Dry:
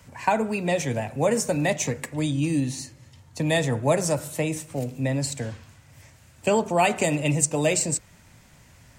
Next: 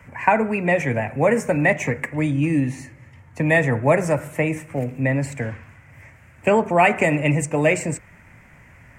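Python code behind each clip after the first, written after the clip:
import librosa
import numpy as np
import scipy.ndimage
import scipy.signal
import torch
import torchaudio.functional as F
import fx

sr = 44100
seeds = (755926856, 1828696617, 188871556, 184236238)

y = fx.high_shelf_res(x, sr, hz=2900.0, db=-10.5, q=3.0)
y = F.gain(torch.from_numpy(y), 4.0).numpy()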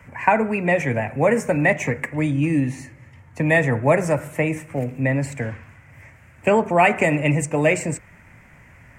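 y = x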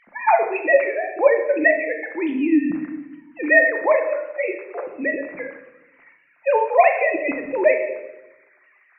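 y = fx.sine_speech(x, sr)
y = fx.room_shoebox(y, sr, seeds[0], volume_m3=390.0, walls='mixed', distance_m=0.79)
y = F.gain(torch.from_numpy(y), -1.0).numpy()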